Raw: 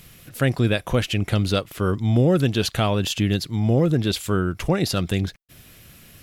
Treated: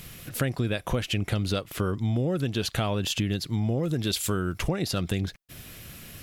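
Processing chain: 3.83–4.58 s: treble shelf 3.5 kHz +8.5 dB; compression 5:1, threshold -28 dBFS, peak gain reduction 13 dB; trim +3.5 dB

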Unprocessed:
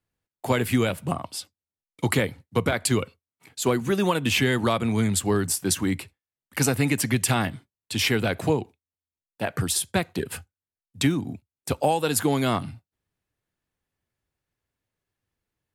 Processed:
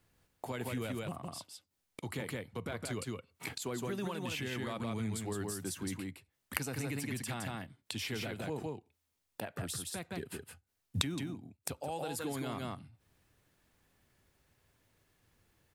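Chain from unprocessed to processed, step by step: delay 165 ms -4.5 dB; peak limiter -16 dBFS, peak gain reduction 8.5 dB; inverted gate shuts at -36 dBFS, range -24 dB; trim +11 dB

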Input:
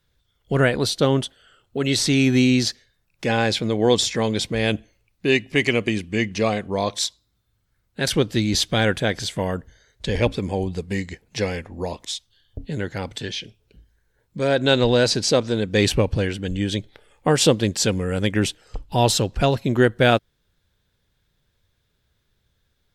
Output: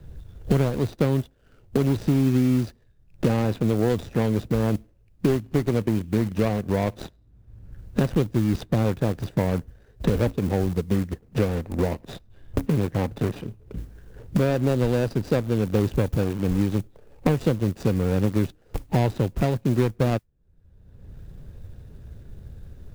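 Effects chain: median filter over 41 samples; modulation noise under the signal 29 dB; in parallel at -8 dB: bit crusher 5-bit; on the sum: bass shelf 190 Hz +6 dB; three bands compressed up and down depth 100%; trim -6 dB

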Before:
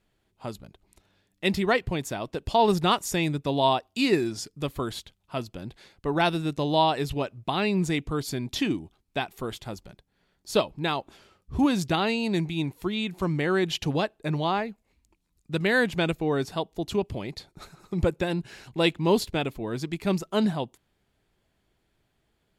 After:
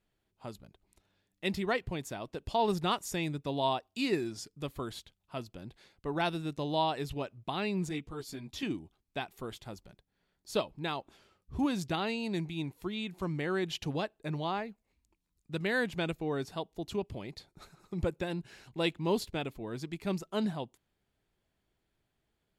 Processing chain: 7.89–8.63 s: three-phase chorus; trim -8 dB

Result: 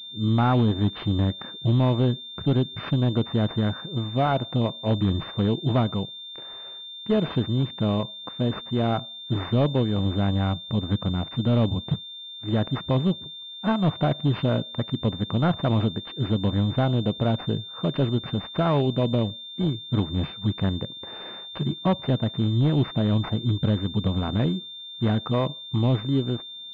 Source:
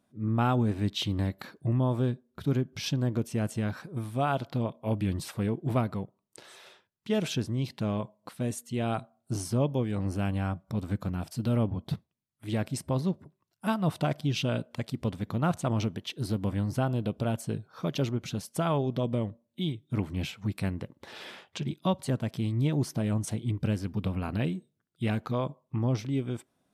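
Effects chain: hard clipper -21.5 dBFS, distortion -20 dB; class-D stage that switches slowly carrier 3.6 kHz; trim +6.5 dB

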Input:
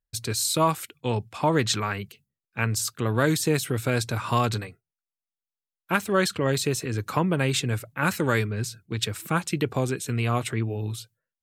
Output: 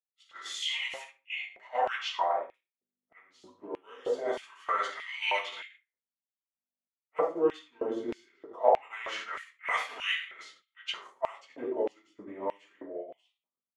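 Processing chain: treble shelf 5.2 kHz +4.5 dB; simulated room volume 590 m³, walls furnished, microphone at 8.5 m; in parallel at +3 dB: compression, threshold -14 dBFS, peak gain reduction 10.5 dB; on the sum: hum 60 Hz, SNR 13 dB; expander -2 dBFS; wah-wah 0.27 Hz 350–3000 Hz, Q 3.2; tape speed -17%; LFO high-pass square 1.6 Hz 570–2600 Hz; tape noise reduction on one side only decoder only; trim -7.5 dB

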